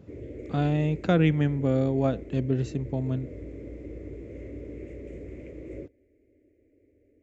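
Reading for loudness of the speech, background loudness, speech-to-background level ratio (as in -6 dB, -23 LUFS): -26.5 LUFS, -42.0 LUFS, 15.5 dB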